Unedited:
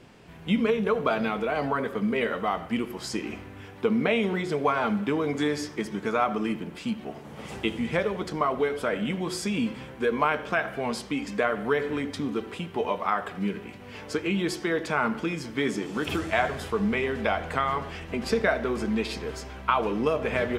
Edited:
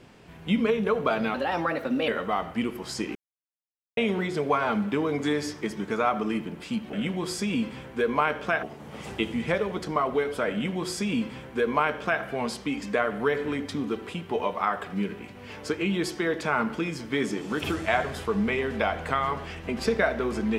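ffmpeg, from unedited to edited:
-filter_complex "[0:a]asplit=7[s0][s1][s2][s3][s4][s5][s6];[s0]atrim=end=1.344[s7];[s1]atrim=start=1.34:end=2.23,asetpts=PTS-STARTPTS,asetrate=52920,aresample=44100[s8];[s2]atrim=start=2.226:end=3.3,asetpts=PTS-STARTPTS,afade=t=out:st=1.07:d=0.004:c=hsin[s9];[s3]atrim=start=3.3:end=4.12,asetpts=PTS-STARTPTS,volume=0[s10];[s4]atrim=start=4.12:end=7.082,asetpts=PTS-STARTPTS,afade=t=in:d=0.004:c=hsin[s11];[s5]atrim=start=8.968:end=10.672[s12];[s6]atrim=start=7.078[s13];[s7][s8]acrossfade=d=0.004:c1=hsin:c2=hsin[s14];[s9][s10][s11]concat=n=3:v=0:a=1[s15];[s14][s15]acrossfade=d=0.004:c1=hsin:c2=hsin[s16];[s16][s12]acrossfade=d=0.004:c1=hsin:c2=hsin[s17];[s17][s13]acrossfade=d=0.004:c1=hsin:c2=hsin"

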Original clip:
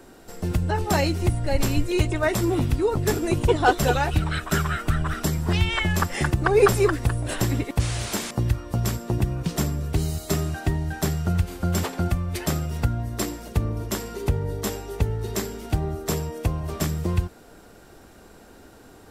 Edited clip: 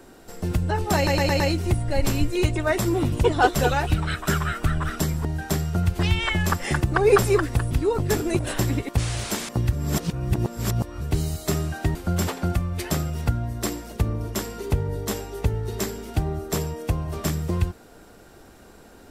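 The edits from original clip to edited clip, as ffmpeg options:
-filter_complex "[0:a]asplit=13[s0][s1][s2][s3][s4][s5][s6][s7][s8][s9][s10][s11][s12];[s0]atrim=end=1.072[s13];[s1]atrim=start=0.958:end=1.072[s14];[s2]atrim=start=0.958:end=1.072[s15];[s3]atrim=start=0.958:end=1.072[s16];[s4]atrim=start=0.958:end=2.682[s17];[s5]atrim=start=3.358:end=5.492[s18];[s6]atrim=start=10.768:end=11.512[s19];[s7]atrim=start=5.488:end=7.212[s20];[s8]atrim=start=2.678:end=3.362[s21];[s9]atrim=start=7.208:end=8.552[s22];[s10]atrim=start=8.548:end=9.832,asetpts=PTS-STARTPTS,areverse[s23];[s11]atrim=start=9.828:end=10.772[s24];[s12]atrim=start=11.508[s25];[s13][s14]acrossfade=d=0.004:c1=hsin:c2=hsin[s26];[s26][s15]acrossfade=d=0.004:c1=hsin:c2=hsin[s27];[s27][s16]acrossfade=d=0.004:c1=hsin:c2=hsin[s28];[s28][s17]acrossfade=d=0.004:c1=hsin:c2=hsin[s29];[s29][s18]acrossfade=d=0.004:c1=hsin:c2=hsin[s30];[s30][s19]acrossfade=d=0.004:c1=hsin:c2=hsin[s31];[s31][s20]acrossfade=d=0.004:c1=hsin:c2=hsin[s32];[s32][s21]acrossfade=d=0.004:c1=hsin:c2=hsin[s33];[s33][s22]acrossfade=d=0.004:c1=hsin:c2=hsin[s34];[s34][s23]acrossfade=d=0.004:c1=hsin:c2=hsin[s35];[s35][s24]acrossfade=d=0.004:c1=hsin:c2=hsin[s36];[s36][s25]acrossfade=d=0.004:c1=hsin:c2=hsin"

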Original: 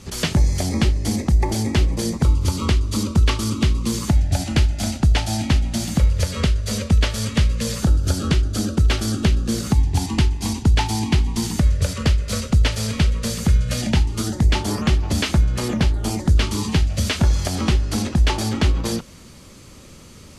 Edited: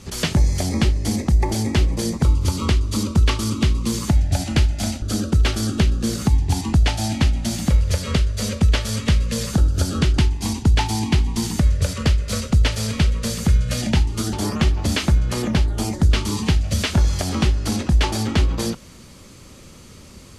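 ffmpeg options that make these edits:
-filter_complex "[0:a]asplit=5[s0][s1][s2][s3][s4];[s0]atrim=end=5.022[s5];[s1]atrim=start=8.468:end=10.182[s6];[s2]atrim=start=5.018:end=8.472[s7];[s3]atrim=start=10.178:end=14.332[s8];[s4]atrim=start=14.588[s9];[s5][s6]acrossfade=d=0.004:c1=hsin:c2=hsin[s10];[s10][s7]acrossfade=d=0.004:c1=hsin:c2=hsin[s11];[s11][s8]acrossfade=d=0.004:c1=hsin:c2=hsin[s12];[s12][s9]acrossfade=d=0.004:c1=hsin:c2=hsin"

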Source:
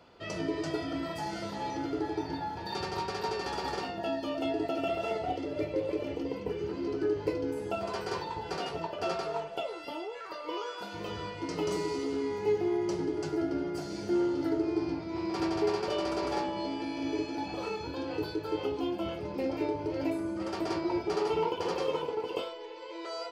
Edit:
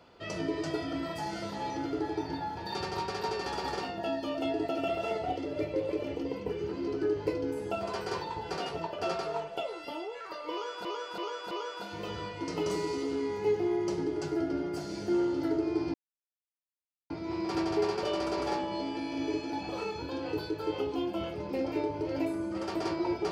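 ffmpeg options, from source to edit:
-filter_complex "[0:a]asplit=5[s0][s1][s2][s3][s4];[s0]atrim=end=10.852[s5];[s1]atrim=start=10.518:end=10.852[s6];[s2]atrim=start=10.518:end=10.852[s7];[s3]atrim=start=10.518:end=14.95,asetpts=PTS-STARTPTS,afade=t=out:st=4.428:d=0.004:c=hsin,apad=pad_dur=1.16[s8];[s4]atrim=start=14.95,asetpts=PTS-STARTPTS,afade=t=in:d=0.004:c=hsin[s9];[s5][s6]acrossfade=d=0.004:c1=hsin:c2=hsin[s10];[s10][s7]acrossfade=d=0.004:c1=hsin:c2=hsin[s11];[s8][s9]concat=n=2:v=0:a=1[s12];[s11][s12]acrossfade=d=0.004:c1=hsin:c2=hsin"

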